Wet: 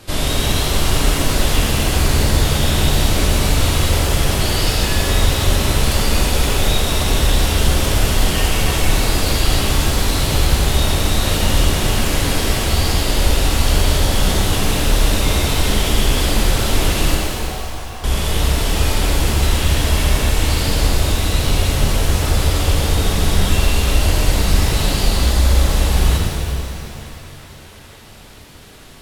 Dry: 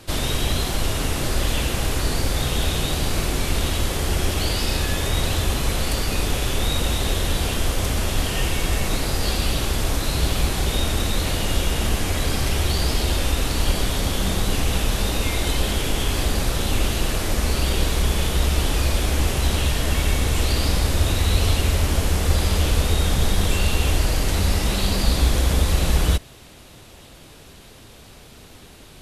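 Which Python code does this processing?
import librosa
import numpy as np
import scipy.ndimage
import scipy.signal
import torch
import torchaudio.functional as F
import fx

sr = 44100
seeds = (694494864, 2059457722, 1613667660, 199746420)

y = fx.rider(x, sr, range_db=10, speed_s=0.5)
y = fx.formant_cascade(y, sr, vowel='a', at=(17.15, 18.04))
y = fx.echo_banded(y, sr, ms=899, feedback_pct=69, hz=1600.0, wet_db=-17.0)
y = fx.rev_shimmer(y, sr, seeds[0], rt60_s=2.6, semitones=7, shimmer_db=-8, drr_db=-3.0)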